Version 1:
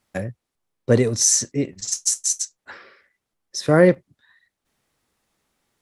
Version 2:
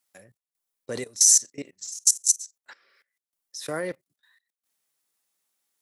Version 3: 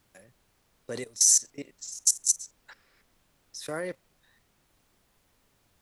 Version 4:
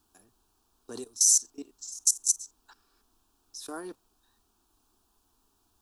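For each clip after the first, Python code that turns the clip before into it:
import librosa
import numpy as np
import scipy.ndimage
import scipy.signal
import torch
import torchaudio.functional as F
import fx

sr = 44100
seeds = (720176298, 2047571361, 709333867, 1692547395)

y1 = fx.level_steps(x, sr, step_db=20)
y1 = fx.riaa(y1, sr, side='recording')
y1 = y1 * librosa.db_to_amplitude(-6.0)
y2 = fx.dmg_noise_colour(y1, sr, seeds[0], colour='pink', level_db=-65.0)
y2 = y2 * librosa.db_to_amplitude(-3.5)
y3 = fx.fixed_phaser(y2, sr, hz=550.0, stages=6)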